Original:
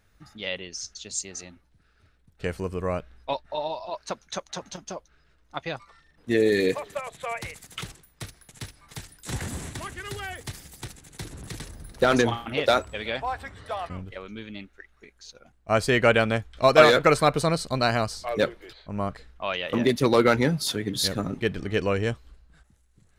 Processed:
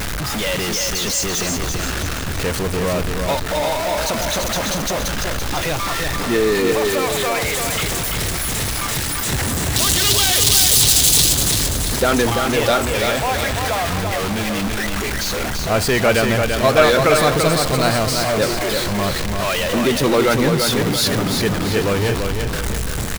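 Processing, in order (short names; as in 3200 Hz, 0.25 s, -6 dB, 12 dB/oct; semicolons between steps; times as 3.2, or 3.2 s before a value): zero-crossing step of -17.5 dBFS; 9.76–11.33 resonant high shelf 2600 Hz +10.5 dB, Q 1.5; feedback echo 0.338 s, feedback 46%, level -5 dB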